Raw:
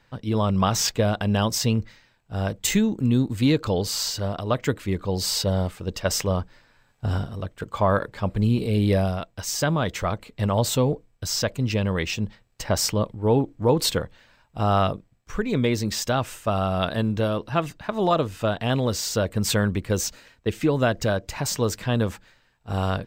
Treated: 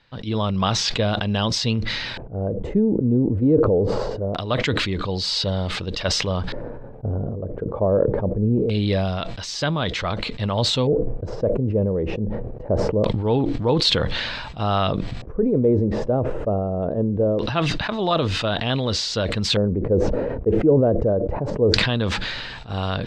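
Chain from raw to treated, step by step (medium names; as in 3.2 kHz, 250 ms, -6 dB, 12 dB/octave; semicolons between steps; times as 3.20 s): LFO low-pass square 0.23 Hz 490–4000 Hz; decay stretcher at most 28 dB/s; trim -1 dB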